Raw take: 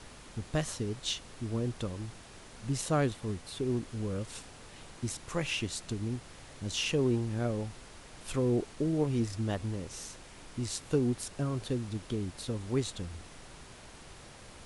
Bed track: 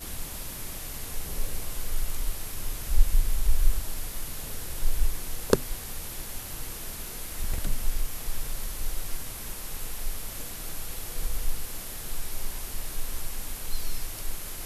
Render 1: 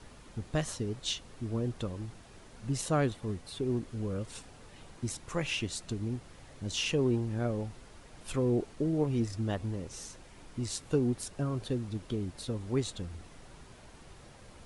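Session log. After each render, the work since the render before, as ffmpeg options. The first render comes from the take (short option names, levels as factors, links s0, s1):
-af "afftdn=nr=6:nf=-51"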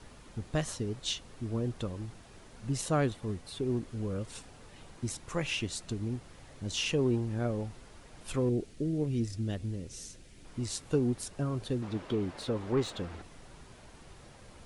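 -filter_complex "[0:a]asettb=1/sr,asplit=3[s0][s1][s2];[s0]atrim=end=8.494[s3];[s1]atrim=start=8.49:end=10.45,asetpts=PTS-STARTPTS,afade=t=in:d=0.004:c=qsin,afade=t=out:st=1.956:d=0.004:c=qsin,equalizer=f=980:t=o:w=1.4:g=-13.5[s4];[s2]atrim=start=10.446[s5];[s3][s4]acrossfade=d=0.004:c1=hsin:c2=qsin[s6];[s6][s5]acrossfade=d=0.004:c1=qsin:c2=hsin,asettb=1/sr,asplit=3[s7][s8][s9];[s7]atrim=end=11.824[s10];[s8]atrim=start=11.82:end=13.22,asetpts=PTS-STARTPTS,afade=t=in:d=0.004:c=qsin,afade=t=out:st=1.396:d=0.004:c=qsin,asplit=2[s11][s12];[s12]highpass=f=720:p=1,volume=8.91,asoftclip=type=tanh:threshold=0.119[s13];[s11][s13]amix=inputs=2:normalize=0,lowpass=f=1200:p=1,volume=0.501[s14];[s9]atrim=start=13.216[s15];[s10][s14]acrossfade=d=0.004:c1=hsin:c2=qsin[s16];[s16][s15]acrossfade=d=0.004:c1=qsin:c2=hsin"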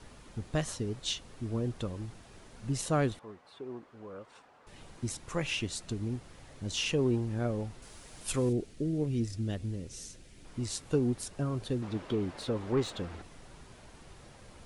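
-filter_complex "[0:a]asettb=1/sr,asplit=3[s0][s1][s2];[s0]atrim=end=3.194[s3];[s1]atrim=start=3.19:end=4.67,asetpts=PTS-STARTPTS,afade=t=in:d=0.004:c=qsin,afade=t=out:st=1.476:d=0.004:c=qsin,bandpass=f=1000:t=q:w=1.1[s4];[s2]atrim=start=4.666[s5];[s3][s4]acrossfade=d=0.004:c1=hsin:c2=qsin[s6];[s6][s5]acrossfade=d=0.004:c1=qsin:c2=hsin,asettb=1/sr,asplit=3[s7][s8][s9];[s7]atrim=end=7.824[s10];[s8]atrim=start=7.82:end=8.53,asetpts=PTS-STARTPTS,afade=t=in:d=0.004:c=qsin,afade=t=out:st=0.706:d=0.004:c=qsin,highshelf=f=4100:g=11.5[s11];[s9]atrim=start=8.526[s12];[s10][s11]acrossfade=d=0.004:c1=hsin:c2=qsin[s13];[s13][s12]acrossfade=d=0.004:c1=qsin:c2=hsin"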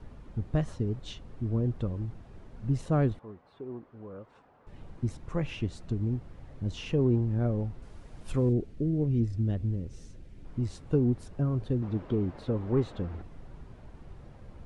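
-af "lowpass=f=1100:p=1,lowshelf=f=200:g=8.5"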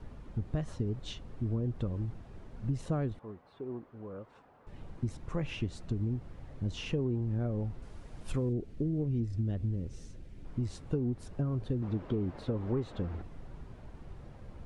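-af "acompressor=threshold=0.0398:ratio=6"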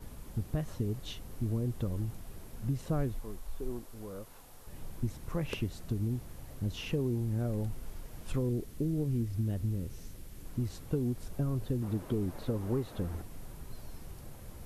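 -filter_complex "[1:a]volume=0.106[s0];[0:a][s0]amix=inputs=2:normalize=0"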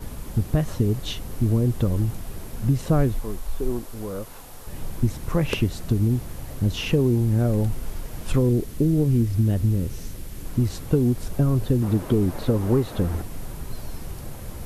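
-af "volume=3.98"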